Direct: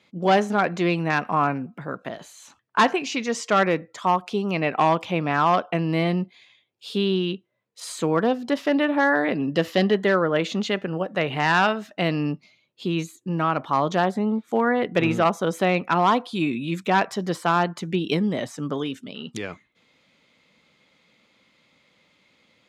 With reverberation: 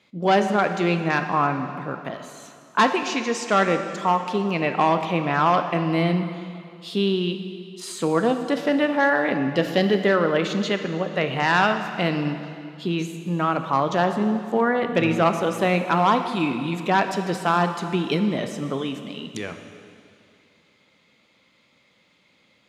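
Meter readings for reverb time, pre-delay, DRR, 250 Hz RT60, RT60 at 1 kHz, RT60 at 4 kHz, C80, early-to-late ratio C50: 2.5 s, 7 ms, 7.0 dB, 2.5 s, 2.5 s, 2.3 s, 9.0 dB, 8.0 dB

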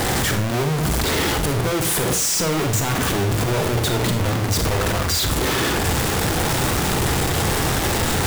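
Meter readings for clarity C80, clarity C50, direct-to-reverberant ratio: 13.5 dB, 9.0 dB, 6.0 dB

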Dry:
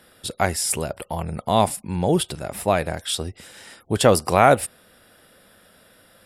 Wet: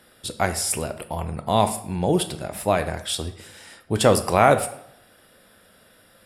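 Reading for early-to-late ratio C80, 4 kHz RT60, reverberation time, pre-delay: 15.5 dB, 0.55 s, 0.70 s, 9 ms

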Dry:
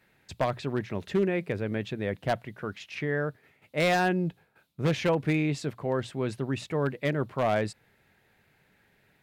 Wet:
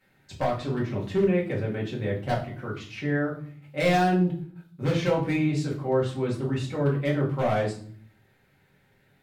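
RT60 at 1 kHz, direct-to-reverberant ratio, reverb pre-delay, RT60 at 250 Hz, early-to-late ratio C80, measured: 0.50 s, -4.5 dB, 4 ms, 0.80 s, 13.0 dB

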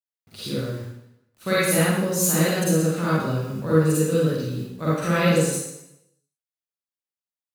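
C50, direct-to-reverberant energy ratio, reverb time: -6.0 dB, -10.0 dB, 0.85 s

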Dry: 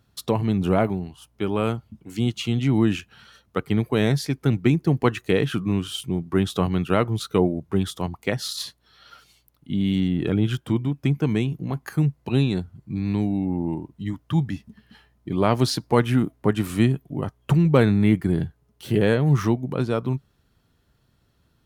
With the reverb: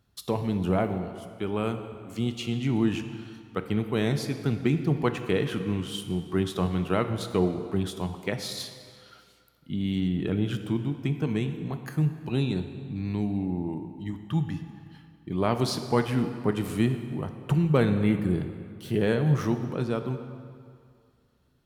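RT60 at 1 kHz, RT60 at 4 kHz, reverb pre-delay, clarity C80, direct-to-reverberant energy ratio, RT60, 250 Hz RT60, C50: 2.3 s, 1.7 s, 3 ms, 10.0 dB, 7.5 dB, 2.2 s, 2.1 s, 9.0 dB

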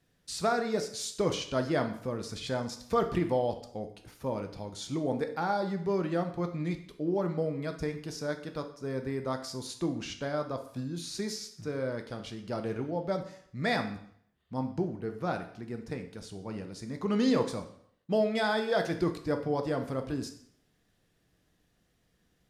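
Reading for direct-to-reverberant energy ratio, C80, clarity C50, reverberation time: 5.5 dB, 14.0 dB, 10.0 dB, 0.65 s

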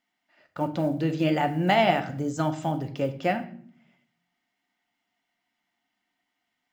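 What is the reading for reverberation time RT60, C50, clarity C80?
0.60 s, 13.5 dB, 17.0 dB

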